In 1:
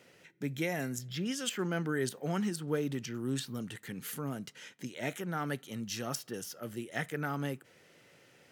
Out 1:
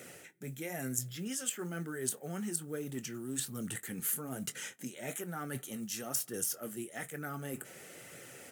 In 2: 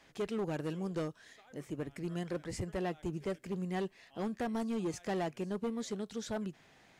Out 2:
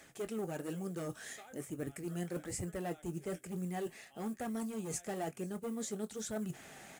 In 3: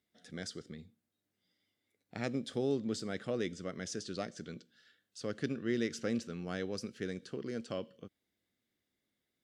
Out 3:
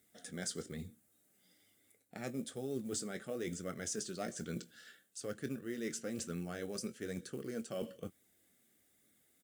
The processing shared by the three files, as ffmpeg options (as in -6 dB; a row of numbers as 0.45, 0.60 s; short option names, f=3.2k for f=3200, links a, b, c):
-filter_complex "[0:a]highpass=f=56:p=1,areverse,acompressor=threshold=-48dB:ratio=5,areverse,equalizer=f=910:t=o:w=1.4:g=2.5,asplit=2[a][b];[b]adelay=23,volume=-13dB[c];[a][c]amix=inputs=2:normalize=0,acrusher=bits=8:mode=log:mix=0:aa=0.000001,highshelf=f=6.3k:t=q:w=1.5:g=9.5,bandreject=f=1k:w=5.8,flanger=delay=0.5:depth=4.8:regen=-49:speed=1.1:shape=sinusoidal,volume=12.5dB"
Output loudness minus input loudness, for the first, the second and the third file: -1.5, -2.5, -3.5 LU